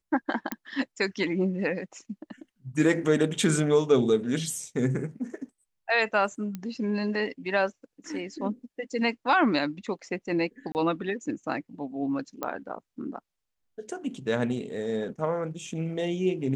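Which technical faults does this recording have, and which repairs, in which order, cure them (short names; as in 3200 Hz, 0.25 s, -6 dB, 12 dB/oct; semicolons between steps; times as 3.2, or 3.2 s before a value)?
0.52 pop -14 dBFS
6.55 pop -21 dBFS
10.72–10.75 gap 29 ms
12.43 pop -16 dBFS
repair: de-click; interpolate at 10.72, 29 ms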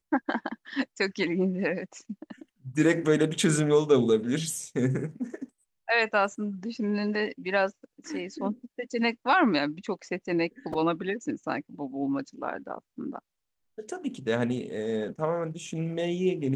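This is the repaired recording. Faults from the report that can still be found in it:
none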